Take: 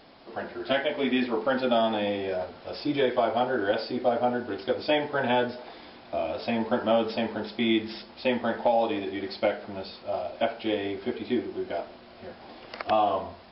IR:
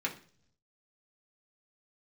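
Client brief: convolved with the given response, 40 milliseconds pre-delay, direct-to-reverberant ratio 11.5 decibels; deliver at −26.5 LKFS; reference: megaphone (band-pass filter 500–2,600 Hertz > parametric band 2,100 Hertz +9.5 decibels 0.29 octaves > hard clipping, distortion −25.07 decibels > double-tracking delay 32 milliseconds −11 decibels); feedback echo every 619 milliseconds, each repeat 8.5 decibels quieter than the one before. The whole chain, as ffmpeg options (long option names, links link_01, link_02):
-filter_complex "[0:a]aecho=1:1:619|1238|1857|2476:0.376|0.143|0.0543|0.0206,asplit=2[link_01][link_02];[1:a]atrim=start_sample=2205,adelay=40[link_03];[link_02][link_03]afir=irnorm=-1:irlink=0,volume=-16.5dB[link_04];[link_01][link_04]amix=inputs=2:normalize=0,highpass=500,lowpass=2600,equalizer=frequency=2100:width_type=o:width=0.29:gain=9.5,asoftclip=type=hard:threshold=-17.5dB,asplit=2[link_05][link_06];[link_06]adelay=32,volume=-11dB[link_07];[link_05][link_07]amix=inputs=2:normalize=0,volume=3dB"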